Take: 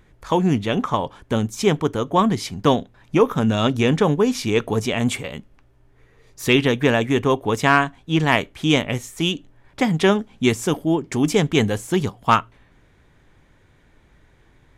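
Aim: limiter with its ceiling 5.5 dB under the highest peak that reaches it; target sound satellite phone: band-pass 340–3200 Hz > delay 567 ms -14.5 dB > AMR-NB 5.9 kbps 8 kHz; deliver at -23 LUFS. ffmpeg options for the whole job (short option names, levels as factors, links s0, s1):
-af "alimiter=limit=0.376:level=0:latency=1,highpass=340,lowpass=3200,aecho=1:1:567:0.188,volume=1.41" -ar 8000 -c:a libopencore_amrnb -b:a 5900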